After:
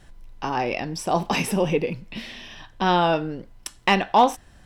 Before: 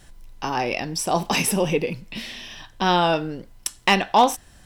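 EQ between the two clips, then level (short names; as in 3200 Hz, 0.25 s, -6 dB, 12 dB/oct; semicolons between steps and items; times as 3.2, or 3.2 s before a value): high shelf 4500 Hz -10.5 dB; 0.0 dB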